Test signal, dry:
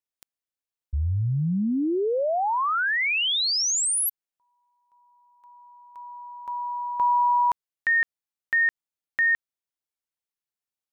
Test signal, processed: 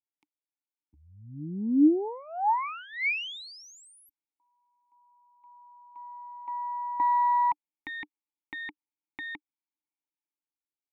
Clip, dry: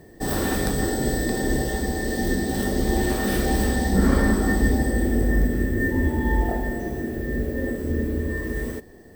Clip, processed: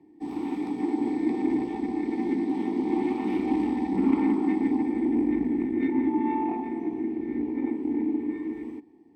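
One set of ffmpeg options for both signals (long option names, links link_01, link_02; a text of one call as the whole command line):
ffmpeg -i in.wav -filter_complex "[0:a]acrossover=split=160|3600[link_01][link_02][link_03];[link_01]tremolo=f=0.55:d=0.73[link_04];[link_02]dynaudnorm=framelen=170:gausssize=9:maxgain=6dB[link_05];[link_04][link_05][link_03]amix=inputs=3:normalize=0,aeval=exprs='0.668*(cos(1*acos(clip(val(0)/0.668,-1,1)))-cos(1*PI/2))+0.168*(cos(2*acos(clip(val(0)/0.668,-1,1)))-cos(2*PI/2))+0.15*(cos(4*acos(clip(val(0)/0.668,-1,1)))-cos(4*PI/2))':channel_layout=same,asplit=3[link_06][link_07][link_08];[link_06]bandpass=frequency=300:width_type=q:width=8,volume=0dB[link_09];[link_07]bandpass=frequency=870:width_type=q:width=8,volume=-6dB[link_10];[link_08]bandpass=frequency=2240:width_type=q:width=8,volume=-9dB[link_11];[link_09][link_10][link_11]amix=inputs=3:normalize=0,volume=2.5dB" out.wav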